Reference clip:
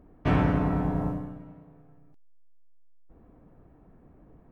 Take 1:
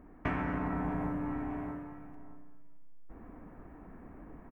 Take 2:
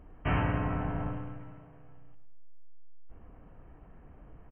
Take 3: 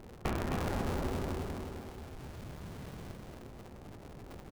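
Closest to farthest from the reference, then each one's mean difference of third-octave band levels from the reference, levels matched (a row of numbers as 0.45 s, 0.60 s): 2, 1, 3; 5.0 dB, 8.5 dB, 17.5 dB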